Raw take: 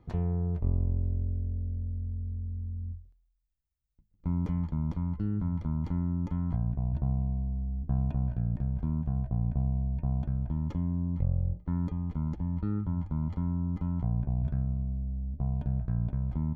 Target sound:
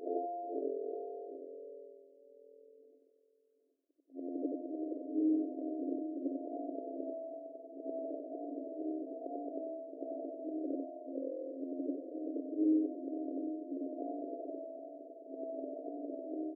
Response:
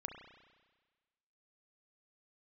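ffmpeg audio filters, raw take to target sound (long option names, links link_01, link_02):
-af "afftfilt=real='re':imag='-im':win_size=8192:overlap=0.75,afftfilt=real='re*between(b*sr/4096,260,700)':imag='im*between(b*sr/4096,260,700)':win_size=4096:overlap=0.75,aecho=1:1:769:0.282,volume=15dB"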